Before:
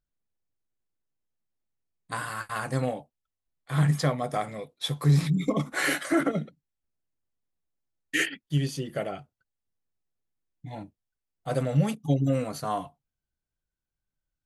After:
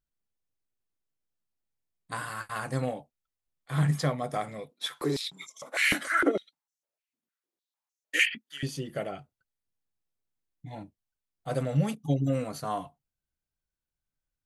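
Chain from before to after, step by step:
0:04.71–0:08.63: high-pass on a step sequencer 6.6 Hz 220–6,100 Hz
level −2.5 dB

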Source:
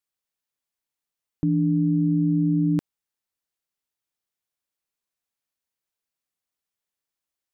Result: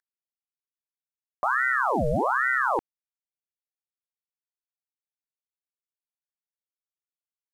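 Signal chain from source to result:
variable-slope delta modulation 64 kbit/s
ring modulator whose carrier an LFO sweeps 1,000 Hz, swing 70%, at 1.2 Hz

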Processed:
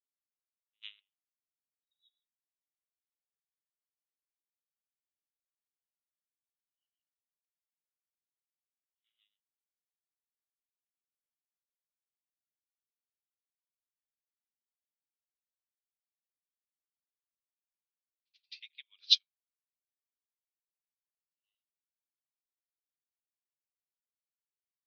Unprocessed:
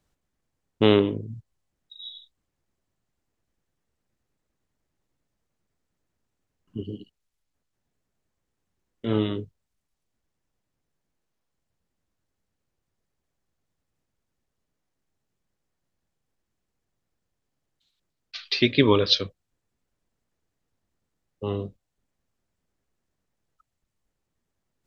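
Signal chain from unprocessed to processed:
Chebyshev high-pass filter 2,500 Hz, order 3
backwards echo 84 ms −14.5 dB
rotating-speaker cabinet horn 6.7 Hz, later 0.8 Hz, at 0:12.09
expander for the loud parts 2.5 to 1, over −46 dBFS

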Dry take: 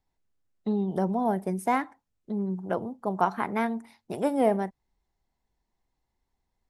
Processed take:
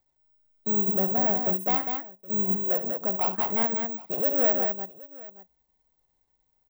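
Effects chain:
parametric band 570 Hz +7 dB 0.52 octaves
transient designer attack −5 dB, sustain −9 dB
in parallel at 0 dB: downward compressor, threshold −29 dBFS, peak gain reduction 12.5 dB
on the sum: bad sample-rate conversion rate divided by 2×, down none, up zero stuff
soft clipping −13.5 dBFS, distortion −11 dB
bass and treble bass −2 dB, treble +3 dB
multi-tap delay 68/195/770 ms −11/−5/−20 dB
level −4 dB

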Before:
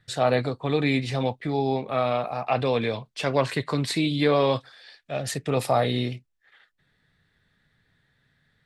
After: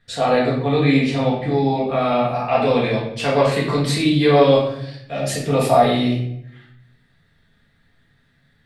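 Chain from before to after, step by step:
high-shelf EQ 9,000 Hz −5 dB, from 0:02.01 +2 dB
rectangular room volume 180 cubic metres, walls mixed, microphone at 1.7 metres

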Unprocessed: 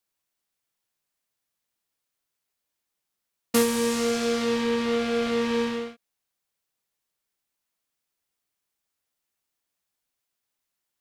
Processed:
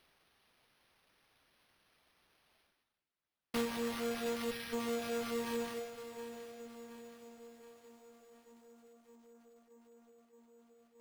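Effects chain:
stylus tracing distortion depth 0.1 ms
time-frequency box erased 0:04.51–0:04.73, 230–1,200 Hz
delay with a band-pass on its return 622 ms, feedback 69%, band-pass 530 Hz, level −16 dB
reversed playback
upward compression, threshold −43 dBFS
reversed playback
tube saturation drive 23 dB, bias 0.5
reverb reduction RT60 0.68 s
bad sample-rate conversion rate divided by 6×, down none, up hold
feedback echo at a low word length 722 ms, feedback 55%, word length 9 bits, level −11.5 dB
level −7 dB

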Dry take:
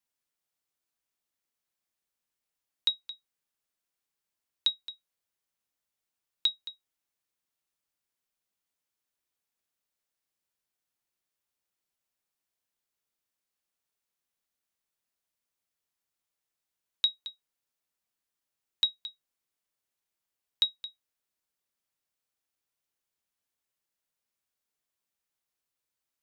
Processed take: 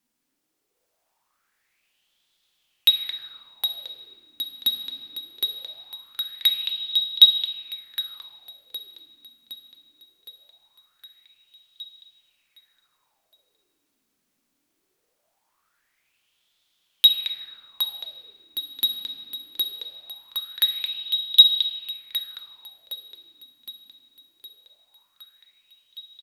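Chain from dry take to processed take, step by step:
dynamic equaliser 2,100 Hz, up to +7 dB, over −43 dBFS, Q 0.82
sine wavefolder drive 5 dB, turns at −13.5 dBFS
repeating echo 764 ms, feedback 59%, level −3 dB
on a send at −3.5 dB: convolution reverb RT60 2.7 s, pre-delay 6 ms
on the sum: auto-filter bell 0.21 Hz 240–3,500 Hz +18 dB
level −1 dB

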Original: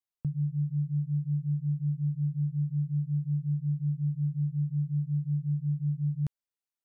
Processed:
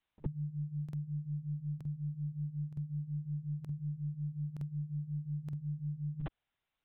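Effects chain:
high-pass filter 290 Hz 24 dB per octave
harmonic and percussive parts rebalanced percussive −4 dB
backwards echo 55 ms −20.5 dB
linear-prediction vocoder at 8 kHz pitch kept
regular buffer underruns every 0.92 s, samples 2,048, repeat, from 0:00.84
level +14.5 dB

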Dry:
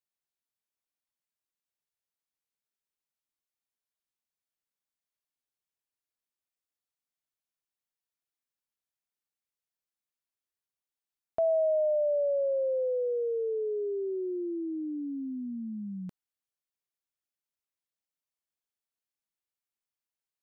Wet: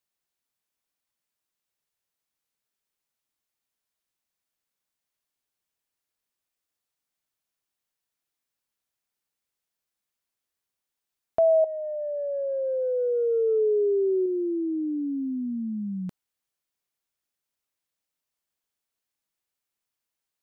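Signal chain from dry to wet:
0:11.64–0:14.26: compressor whose output falls as the input rises −31 dBFS, ratio −0.5
level +6.5 dB

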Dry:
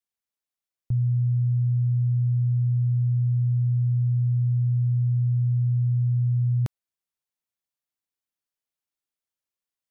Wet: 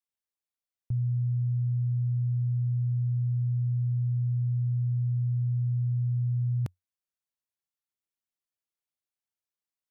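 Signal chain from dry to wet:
parametric band 90 Hz +4.5 dB 0.29 octaves
level −5.5 dB

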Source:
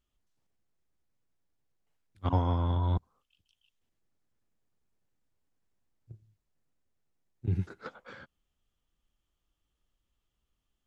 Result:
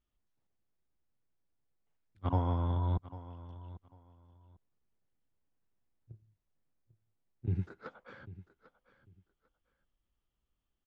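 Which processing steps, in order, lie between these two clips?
low-pass filter 2,500 Hz 6 dB per octave
repeating echo 796 ms, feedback 21%, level −16.5 dB
level −3 dB

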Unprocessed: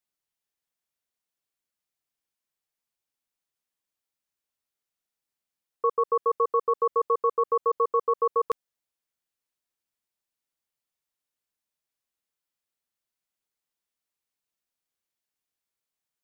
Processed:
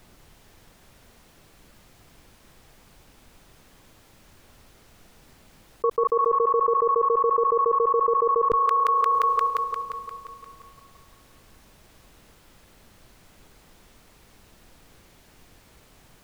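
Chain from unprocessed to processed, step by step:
spectral tilt −3.5 dB per octave
on a send: delay with a high-pass on its return 175 ms, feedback 63%, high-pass 1,600 Hz, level −9 dB
on the sum: envelope flattener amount 100%
level −2 dB

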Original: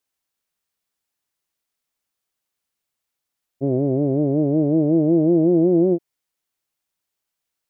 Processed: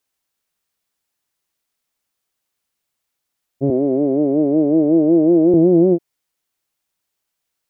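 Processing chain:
0:03.70–0:05.54: high-pass filter 200 Hz 24 dB per octave
level +4 dB

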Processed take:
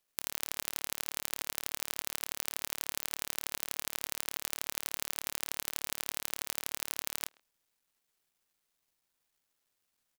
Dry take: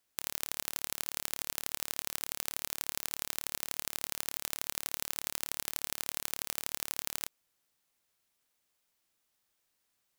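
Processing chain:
bit-depth reduction 12 bits, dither none
far-end echo of a speakerphone 130 ms, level −24 dB

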